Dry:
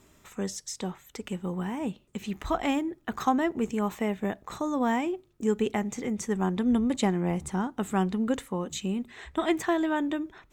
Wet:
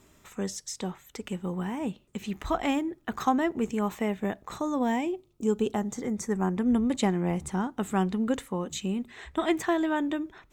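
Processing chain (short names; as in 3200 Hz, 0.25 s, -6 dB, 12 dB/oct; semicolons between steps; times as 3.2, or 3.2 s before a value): 4.82–6.83 bell 1200 Hz -> 4400 Hz -14 dB 0.41 oct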